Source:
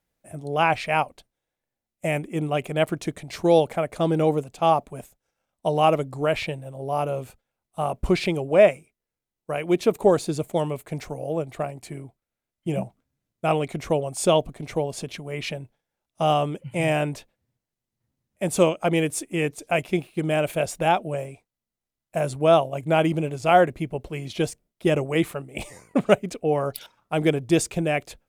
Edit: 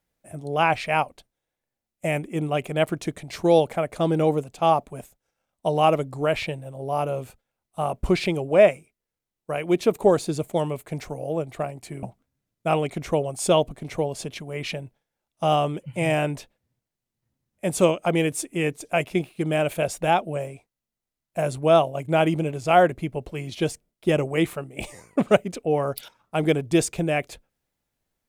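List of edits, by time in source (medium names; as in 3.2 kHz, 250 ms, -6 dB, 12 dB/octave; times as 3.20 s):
12.03–12.81 s: delete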